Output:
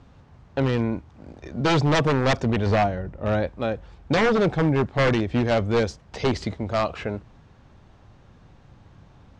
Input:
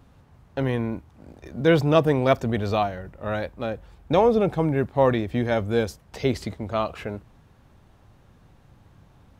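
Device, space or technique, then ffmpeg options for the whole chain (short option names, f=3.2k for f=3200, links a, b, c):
synthesiser wavefolder: -filter_complex "[0:a]asettb=1/sr,asplit=3[a][b][c];[a]atrim=end=2.664[d];[b]atrim=start=2.66:end=3.47,asetpts=PTS-STARTPTS,afade=t=in:d=0.004:c=qsin,afade=t=out:st=0.806:d=0.004:c=qsin,tiltshelf=f=800:g=4[e];[c]atrim=start=3.466[f];[d][e]acrossfade=d=0.004:c1=hsin:c2=qsin[g];[g][f]acrossfade=d=0.004:c1=qsin:c2=hsin,aeval=exprs='0.141*(abs(mod(val(0)/0.141+3,4)-2)-1)':c=same,lowpass=f=6.9k:w=0.5412,lowpass=f=6.9k:w=1.3066,volume=3dB"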